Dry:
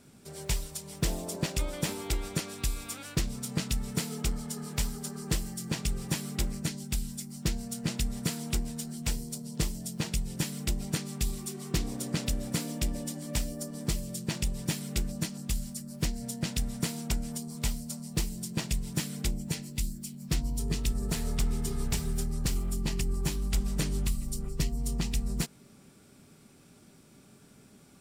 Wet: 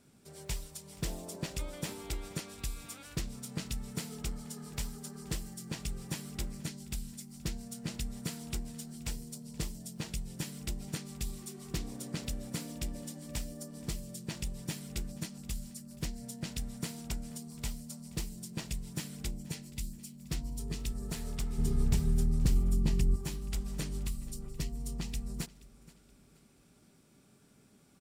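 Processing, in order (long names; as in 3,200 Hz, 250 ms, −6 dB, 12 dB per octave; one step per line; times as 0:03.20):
0:21.58–0:23.16: low-shelf EQ 410 Hz +11 dB
repeating echo 476 ms, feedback 37%, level −20.5 dB
level −7 dB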